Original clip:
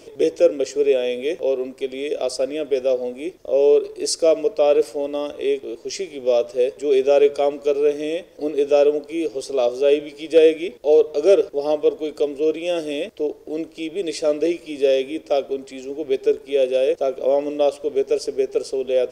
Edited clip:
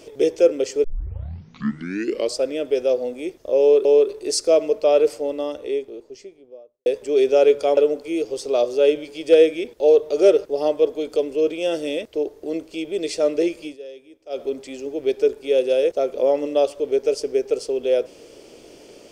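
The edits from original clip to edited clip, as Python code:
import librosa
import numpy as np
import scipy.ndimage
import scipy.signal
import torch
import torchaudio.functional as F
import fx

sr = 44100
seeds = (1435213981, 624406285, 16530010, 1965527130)

y = fx.studio_fade_out(x, sr, start_s=4.83, length_s=1.78)
y = fx.edit(y, sr, fx.tape_start(start_s=0.84, length_s=1.56),
    fx.repeat(start_s=3.6, length_s=0.25, count=2),
    fx.cut(start_s=7.52, length_s=1.29),
    fx.fade_down_up(start_s=14.68, length_s=0.78, db=-20.0, fade_s=0.13), tone=tone)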